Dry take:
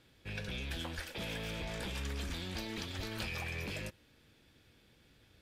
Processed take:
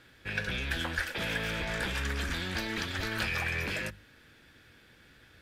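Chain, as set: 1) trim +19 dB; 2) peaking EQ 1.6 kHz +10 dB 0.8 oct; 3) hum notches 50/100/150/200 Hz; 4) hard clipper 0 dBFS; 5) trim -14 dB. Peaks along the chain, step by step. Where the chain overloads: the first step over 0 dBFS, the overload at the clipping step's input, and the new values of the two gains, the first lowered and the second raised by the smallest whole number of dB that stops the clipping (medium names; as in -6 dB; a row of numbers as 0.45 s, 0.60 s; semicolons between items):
-5.0 dBFS, -2.0 dBFS, -2.0 dBFS, -2.0 dBFS, -16.0 dBFS; nothing clips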